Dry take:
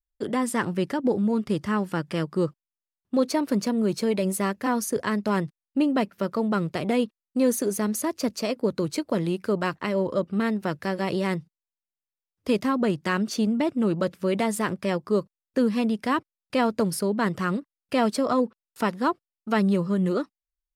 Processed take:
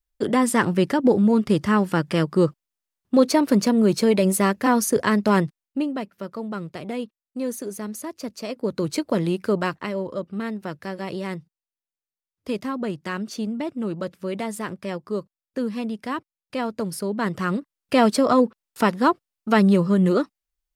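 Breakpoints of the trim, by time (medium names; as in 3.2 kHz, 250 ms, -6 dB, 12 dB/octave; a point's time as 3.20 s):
5.41 s +6 dB
6.01 s -6 dB
8.34 s -6 dB
8.91 s +3 dB
9.58 s +3 dB
10.06 s -4 dB
16.76 s -4 dB
17.95 s +5.5 dB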